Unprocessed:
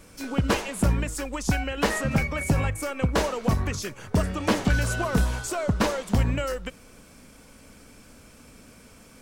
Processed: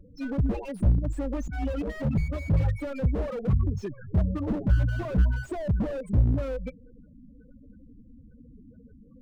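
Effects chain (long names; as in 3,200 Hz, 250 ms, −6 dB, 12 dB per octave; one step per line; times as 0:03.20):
spectral peaks only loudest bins 8
0:00.99–0:01.88: compressor whose output falls as the input rises −31 dBFS, ratio −1
slew-rate limiting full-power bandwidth 11 Hz
level +3 dB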